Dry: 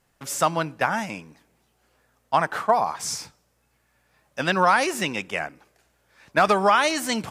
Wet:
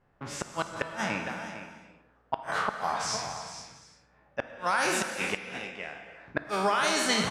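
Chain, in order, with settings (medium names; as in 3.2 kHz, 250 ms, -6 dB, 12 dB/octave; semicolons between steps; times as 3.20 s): spectral sustain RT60 0.57 s; level-controlled noise filter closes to 1.4 kHz, open at -14.5 dBFS; treble shelf 4.3 kHz +6.5 dB; de-hum 231.2 Hz, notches 5; compression 16:1, threshold -22 dBFS, peak gain reduction 12.5 dB; delay 455 ms -11.5 dB; inverted gate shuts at -14 dBFS, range -40 dB; gated-style reverb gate 370 ms flat, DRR 7 dB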